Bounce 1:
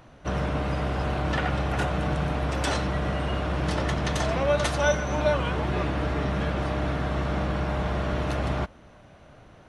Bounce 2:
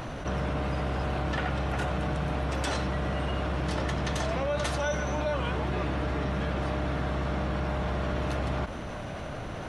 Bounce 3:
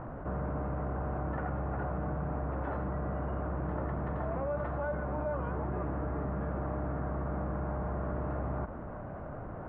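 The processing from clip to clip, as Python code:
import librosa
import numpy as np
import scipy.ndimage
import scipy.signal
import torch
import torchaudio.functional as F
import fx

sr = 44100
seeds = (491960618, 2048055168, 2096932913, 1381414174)

y1 = fx.env_flatten(x, sr, amount_pct=70)
y1 = y1 * 10.0 ** (-8.5 / 20.0)
y2 = scipy.signal.sosfilt(scipy.signal.butter(4, 1400.0, 'lowpass', fs=sr, output='sos'), y1)
y2 = y2 * 10.0 ** (-4.5 / 20.0)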